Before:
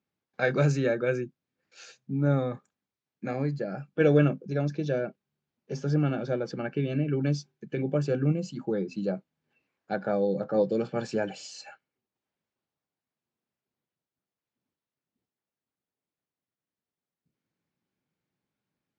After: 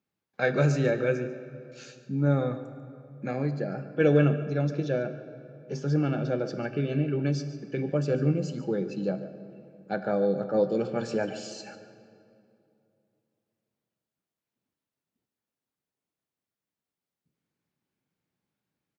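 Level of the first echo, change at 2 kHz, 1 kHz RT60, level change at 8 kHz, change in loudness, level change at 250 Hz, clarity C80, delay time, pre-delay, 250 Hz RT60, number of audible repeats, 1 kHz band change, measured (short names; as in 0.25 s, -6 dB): -15.5 dB, +0.5 dB, 2.5 s, n/a, +0.5 dB, +0.5 dB, 11.0 dB, 0.144 s, 17 ms, 3.0 s, 1, +0.5 dB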